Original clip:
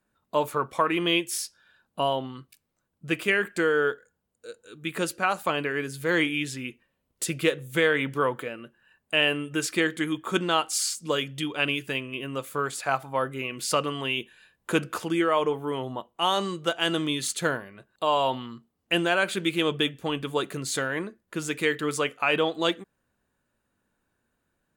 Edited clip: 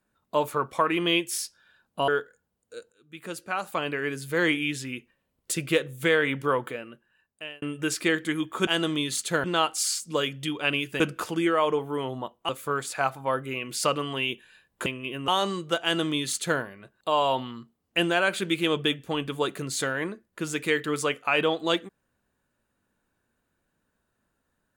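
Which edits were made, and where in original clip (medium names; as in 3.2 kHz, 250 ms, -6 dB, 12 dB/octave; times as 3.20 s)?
2.08–3.80 s: delete
4.64–5.85 s: fade in, from -20.5 dB
8.39–9.34 s: fade out
11.95–12.37 s: swap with 14.74–16.23 s
16.78–17.55 s: copy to 10.39 s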